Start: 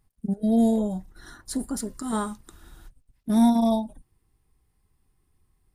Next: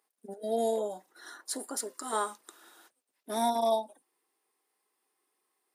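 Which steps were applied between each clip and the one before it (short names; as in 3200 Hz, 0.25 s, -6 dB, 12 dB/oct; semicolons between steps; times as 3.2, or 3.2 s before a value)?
HPF 390 Hz 24 dB/oct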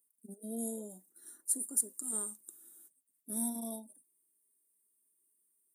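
EQ curve 210 Hz 0 dB, 820 Hz -25 dB, 5000 Hz -19 dB, 8800 Hz +7 dB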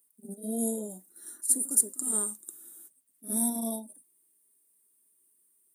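pre-echo 58 ms -13 dB; gain +7.5 dB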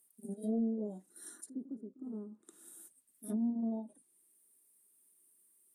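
treble ducked by the level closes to 300 Hz, closed at -27 dBFS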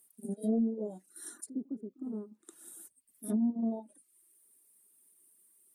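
reverb removal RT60 0.59 s; gain +5 dB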